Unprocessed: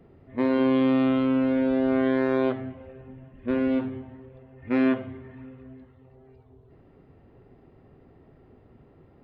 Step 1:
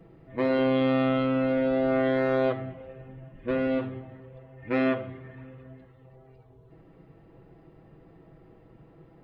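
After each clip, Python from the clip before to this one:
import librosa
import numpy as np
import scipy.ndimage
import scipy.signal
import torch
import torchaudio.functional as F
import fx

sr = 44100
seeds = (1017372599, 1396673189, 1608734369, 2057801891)

y = x + 0.68 * np.pad(x, (int(6.1 * sr / 1000.0), 0))[:len(x)]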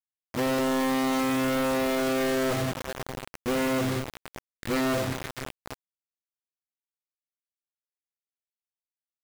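y = fx.quant_companded(x, sr, bits=2)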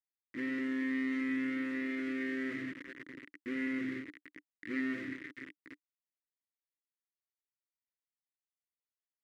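y = fx.double_bandpass(x, sr, hz=760.0, octaves=2.7)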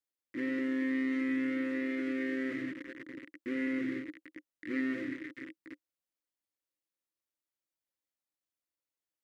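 y = fx.small_body(x, sr, hz=(320.0, 530.0), ring_ms=65, db=10)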